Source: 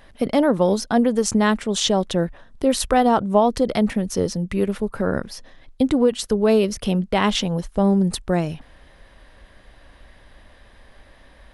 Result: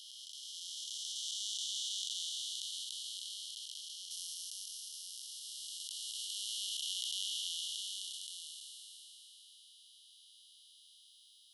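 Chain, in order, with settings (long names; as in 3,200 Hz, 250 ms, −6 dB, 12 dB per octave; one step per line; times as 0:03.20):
spectrum smeared in time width 1,370 ms
Chebyshev high-pass filter 2,900 Hz, order 10
high-shelf EQ 7,500 Hz −6.5 dB, from 0:04.11 +6 dB
level +3 dB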